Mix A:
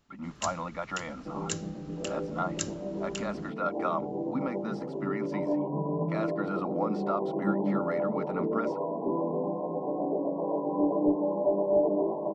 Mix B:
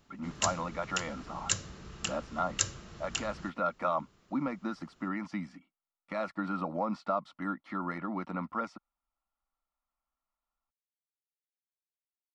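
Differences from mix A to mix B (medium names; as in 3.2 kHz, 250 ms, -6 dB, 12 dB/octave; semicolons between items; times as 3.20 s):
first sound +5.0 dB; second sound: muted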